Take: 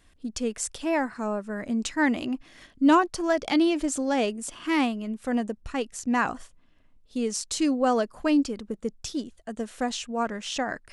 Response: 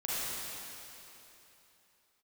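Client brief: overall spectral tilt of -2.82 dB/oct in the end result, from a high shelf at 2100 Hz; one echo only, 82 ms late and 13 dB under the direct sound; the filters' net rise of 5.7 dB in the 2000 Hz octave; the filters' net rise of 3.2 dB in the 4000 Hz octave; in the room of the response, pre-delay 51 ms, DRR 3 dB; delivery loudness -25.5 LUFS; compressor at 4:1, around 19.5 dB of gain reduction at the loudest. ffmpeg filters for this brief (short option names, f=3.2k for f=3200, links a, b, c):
-filter_complex "[0:a]equalizer=f=2k:t=o:g=8.5,highshelf=f=2.1k:g=-5,equalizer=f=4k:t=o:g=6,acompressor=threshold=-39dB:ratio=4,aecho=1:1:82:0.224,asplit=2[a][b];[1:a]atrim=start_sample=2205,adelay=51[c];[b][c]afir=irnorm=-1:irlink=0,volume=-9.5dB[d];[a][d]amix=inputs=2:normalize=0,volume=13dB"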